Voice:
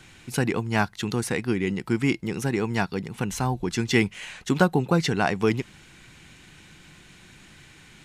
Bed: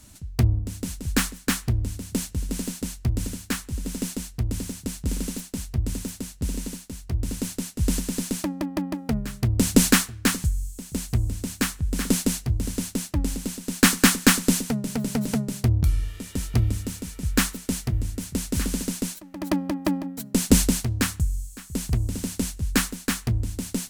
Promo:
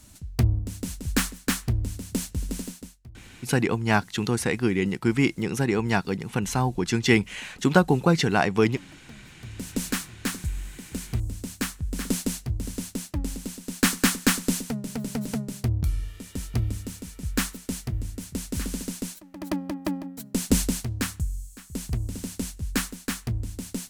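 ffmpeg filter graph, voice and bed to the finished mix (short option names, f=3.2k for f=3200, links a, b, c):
-filter_complex "[0:a]adelay=3150,volume=1.5dB[a];[1:a]volume=16dB,afade=t=out:st=2.47:d=0.49:silence=0.0944061,afade=t=in:st=9.36:d=1.36:silence=0.133352[b];[a][b]amix=inputs=2:normalize=0"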